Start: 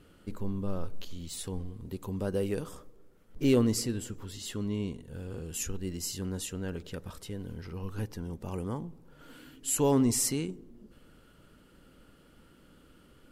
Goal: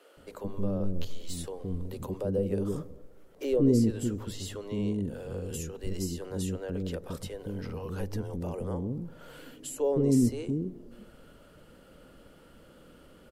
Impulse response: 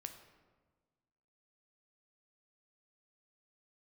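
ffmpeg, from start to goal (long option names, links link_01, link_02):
-filter_complex "[0:a]equalizer=frequency=550:width_type=o:width=1:gain=9.5,bandreject=frequency=53.5:width_type=h:width=4,bandreject=frequency=107:width_type=h:width=4,acrossover=split=470[link_01][link_02];[link_02]acompressor=threshold=-41dB:ratio=16[link_03];[link_01][link_03]amix=inputs=2:normalize=0,acrossover=split=400[link_04][link_05];[link_04]adelay=170[link_06];[link_06][link_05]amix=inputs=2:normalize=0,volume=2.5dB"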